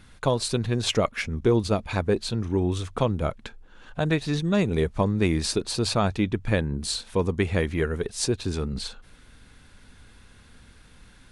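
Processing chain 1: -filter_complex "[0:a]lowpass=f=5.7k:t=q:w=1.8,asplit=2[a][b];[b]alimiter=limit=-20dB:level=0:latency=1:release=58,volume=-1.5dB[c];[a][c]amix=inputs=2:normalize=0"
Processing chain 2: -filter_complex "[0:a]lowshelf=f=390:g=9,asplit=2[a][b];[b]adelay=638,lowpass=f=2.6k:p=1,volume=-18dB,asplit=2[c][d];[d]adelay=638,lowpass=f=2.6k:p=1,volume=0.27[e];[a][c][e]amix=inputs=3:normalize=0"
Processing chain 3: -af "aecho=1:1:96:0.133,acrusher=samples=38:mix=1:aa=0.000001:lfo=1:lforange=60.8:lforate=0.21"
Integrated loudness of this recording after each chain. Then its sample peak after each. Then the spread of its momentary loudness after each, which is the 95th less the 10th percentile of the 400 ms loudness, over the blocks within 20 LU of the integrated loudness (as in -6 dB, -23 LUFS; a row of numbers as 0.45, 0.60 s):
-22.0, -20.0, -26.0 LUFS; -6.5, -3.0, -10.5 dBFS; 5, 8, 7 LU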